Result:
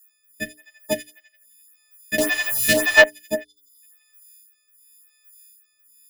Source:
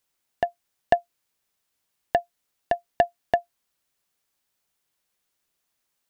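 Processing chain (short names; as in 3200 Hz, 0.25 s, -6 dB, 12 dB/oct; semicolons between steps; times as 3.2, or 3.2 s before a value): frequency quantiser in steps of 6 st; high shelf 4500 Hz +5 dB; notches 60/120/180/240/300/360/420 Hz; sample leveller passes 1; in parallel at +2 dB: compressor, threshold -33 dBFS, peak gain reduction 21 dB; on the sum: thin delay 85 ms, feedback 60%, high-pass 3100 Hz, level -12 dB; on a send at -19 dB: reverb, pre-delay 6 ms; on the sum: rotary speaker horn 0.9 Hz; graphic EQ 125/250/500/1000/2000/4000 Hz -5/+9/-10/-10/+8/-7 dB; 2.18–3.04 power-law curve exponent 0.35; 3.44–3.82 spectral delete 540–3200 Hz; photocell phaser 1.8 Hz; gain +4.5 dB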